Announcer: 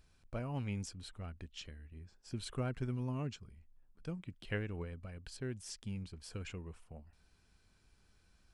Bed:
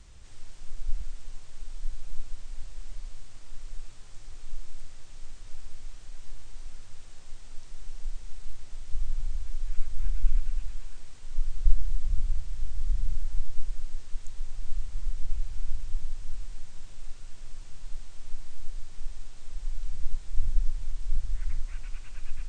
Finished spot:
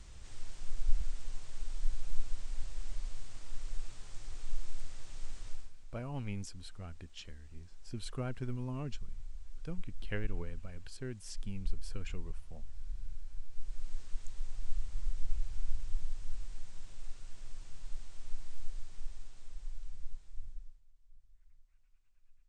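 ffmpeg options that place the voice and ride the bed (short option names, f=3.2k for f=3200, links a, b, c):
-filter_complex "[0:a]adelay=5600,volume=-1dB[a];[1:a]volume=10dB,afade=t=out:st=5.46:d=0.26:silence=0.188365,afade=t=in:st=13.5:d=0.43:silence=0.316228,afade=t=out:st=18.61:d=2.21:silence=0.0334965[b];[a][b]amix=inputs=2:normalize=0"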